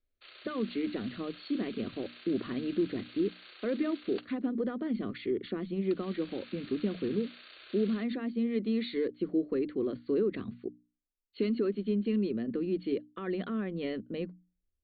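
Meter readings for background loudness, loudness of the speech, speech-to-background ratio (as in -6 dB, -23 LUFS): -51.0 LUFS, -33.5 LUFS, 17.5 dB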